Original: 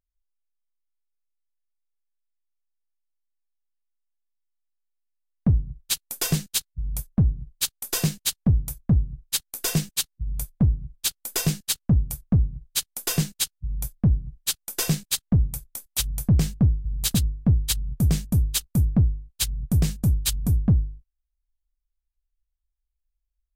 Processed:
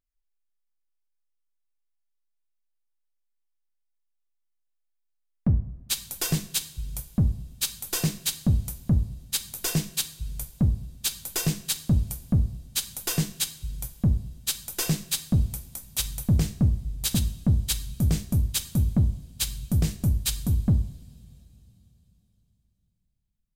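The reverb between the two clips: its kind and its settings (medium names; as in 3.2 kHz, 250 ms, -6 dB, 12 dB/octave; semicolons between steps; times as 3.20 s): two-slope reverb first 0.56 s, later 3.8 s, from -20 dB, DRR 8.5 dB; trim -2.5 dB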